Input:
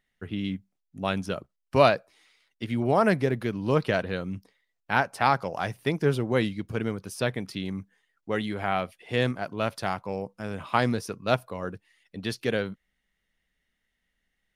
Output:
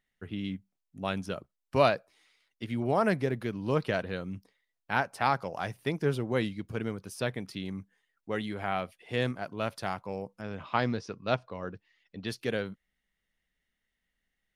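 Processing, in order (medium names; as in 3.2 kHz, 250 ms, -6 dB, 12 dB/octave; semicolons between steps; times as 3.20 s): 10.41–12.28 s: low-pass 5.8 kHz 24 dB/octave; trim -4.5 dB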